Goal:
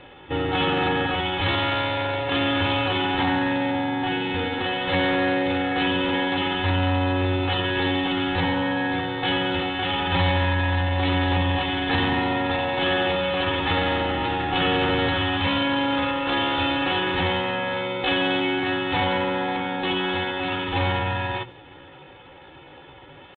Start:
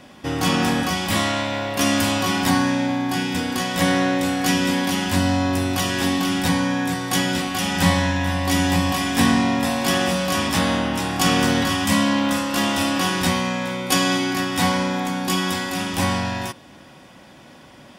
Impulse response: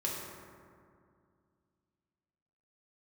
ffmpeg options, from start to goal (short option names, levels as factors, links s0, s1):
-filter_complex "[0:a]bandreject=f=60:t=h:w=6,bandreject=f=120:t=h:w=6,bandreject=f=180:t=h:w=6,bandreject=f=240:t=h:w=6,bandreject=f=300:t=h:w=6,bandreject=f=360:t=h:w=6,bandreject=f=420:t=h:w=6,aecho=1:1:2.3:0.86,aresample=8000,asoftclip=type=tanh:threshold=0.168,aresample=44100,asplit=2[s0][s1];[s1]adelay=130,highpass=300,lowpass=3400,asoftclip=type=hard:threshold=0.0944,volume=0.0355[s2];[s0][s2]amix=inputs=2:normalize=0,atempo=0.77"